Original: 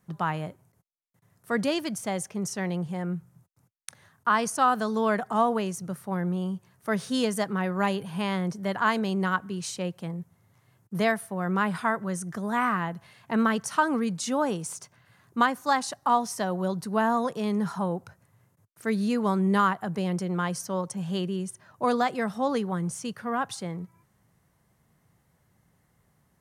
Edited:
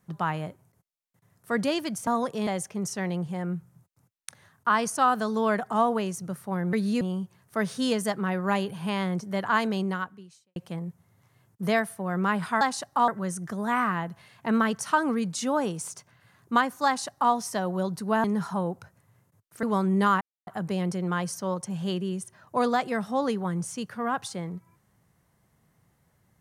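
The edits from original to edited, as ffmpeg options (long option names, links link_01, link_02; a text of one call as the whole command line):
ffmpeg -i in.wav -filter_complex "[0:a]asplit=11[link_01][link_02][link_03][link_04][link_05][link_06][link_07][link_08][link_09][link_10][link_11];[link_01]atrim=end=2.072[link_12];[link_02]atrim=start=17.088:end=17.492[link_13];[link_03]atrim=start=2.068:end=6.332[link_14];[link_04]atrim=start=18.878:end=19.162[link_15];[link_05]atrim=start=6.328:end=9.88,asetpts=PTS-STARTPTS,afade=type=out:start_time=2.792:duration=0.76:curve=qua[link_16];[link_06]atrim=start=9.88:end=11.932,asetpts=PTS-STARTPTS,afade=type=in:duration=0.004:curve=hsin[link_17];[link_07]atrim=start=15.708:end=16.182[link_18];[link_08]atrim=start=11.928:end=17.092[link_19];[link_09]atrim=start=17.488:end=18.882[link_20];[link_10]atrim=start=19.158:end=19.74,asetpts=PTS-STARTPTS,afade=type=out:start_time=0.578:duration=0.004:curve=hsin,apad=pad_dur=0.26[link_21];[link_11]atrim=start=19.74,asetpts=PTS-STARTPTS,afade=type=in:duration=0.004:curve=hsin[link_22];[link_12][link_13]acrossfade=duration=0.004:curve1=hsin:curve2=hsin[link_23];[link_23][link_14]acrossfade=duration=0.004:curve1=hsin:curve2=hsin[link_24];[link_24][link_15]acrossfade=duration=0.004:curve1=hsin:curve2=hsin[link_25];[link_16][link_17]concat=n=2:v=0:a=1[link_26];[link_25][link_26]acrossfade=duration=0.004:curve1=hsin:curve2=hsin[link_27];[link_27][link_18]acrossfade=duration=0.004:curve1=hsin:curve2=hsin[link_28];[link_28][link_19]acrossfade=duration=0.004:curve1=hsin:curve2=hsin[link_29];[link_29][link_20]acrossfade=duration=0.004:curve1=hsin:curve2=hsin[link_30];[link_21][link_22]concat=n=2:v=0:a=1[link_31];[link_30][link_31]acrossfade=duration=0.004:curve1=hsin:curve2=hsin" out.wav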